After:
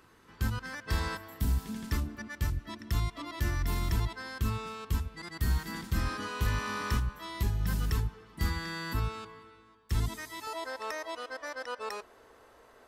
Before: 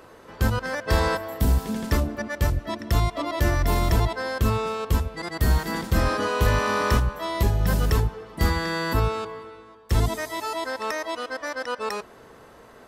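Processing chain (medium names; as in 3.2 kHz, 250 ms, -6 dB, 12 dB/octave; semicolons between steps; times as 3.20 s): peaking EQ 580 Hz -14 dB 0.97 oct, from 10.47 s 160 Hz; trim -8 dB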